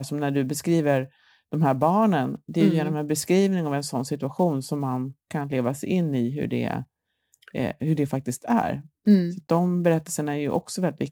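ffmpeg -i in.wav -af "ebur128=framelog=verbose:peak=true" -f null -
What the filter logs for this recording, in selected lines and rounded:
Integrated loudness:
  I:         -24.5 LUFS
  Threshold: -34.8 LUFS
Loudness range:
  LRA:         4.4 LU
  Threshold: -45.0 LUFS
  LRA low:   -27.5 LUFS
  LRA high:  -23.1 LUFS
True peak:
  Peak:       -6.7 dBFS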